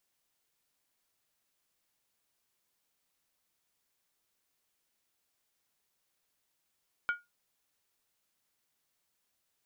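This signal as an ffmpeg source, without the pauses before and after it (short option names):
-f lavfi -i "aevalsrc='0.0631*pow(10,-3*t/0.2)*sin(2*PI*1430*t)+0.0188*pow(10,-3*t/0.158)*sin(2*PI*2279.4*t)+0.00562*pow(10,-3*t/0.137)*sin(2*PI*3054.5*t)+0.00168*pow(10,-3*t/0.132)*sin(2*PI*3283.3*t)+0.000501*pow(10,-3*t/0.123)*sin(2*PI*3793.8*t)':d=0.63:s=44100"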